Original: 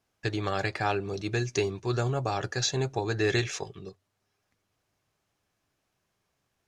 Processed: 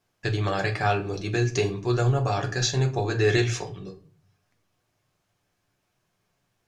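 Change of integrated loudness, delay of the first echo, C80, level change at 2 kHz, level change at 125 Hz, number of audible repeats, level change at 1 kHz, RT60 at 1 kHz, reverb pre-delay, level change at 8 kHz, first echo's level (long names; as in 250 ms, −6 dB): +4.5 dB, no echo audible, 18.0 dB, +3.5 dB, +7.0 dB, no echo audible, +3.5 dB, 0.40 s, 6 ms, +2.5 dB, no echo audible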